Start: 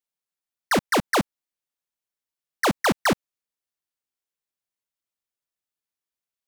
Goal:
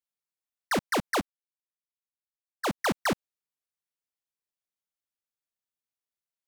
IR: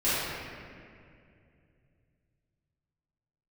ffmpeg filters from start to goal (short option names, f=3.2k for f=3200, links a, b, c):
-filter_complex "[0:a]asettb=1/sr,asplit=3[a][b][c];[a]atrim=end=1.204[d];[b]atrim=start=1.2:end=2.78,asetpts=PTS-STARTPTS,afade=t=in:d=0.004:c=qsin,afade=t=out:st=1.576:d=0.004:c=qsin,agate=range=-33dB:threshold=-19dB:ratio=3:detection=peak[e];[c]atrim=start=2.776[f];[d][e]acrossfade=d=0.004:c1=hsin:c2=qsin[g];[g][f]acrossfade=d=0.004:c1=qsin:c2=hsin,volume=-6dB"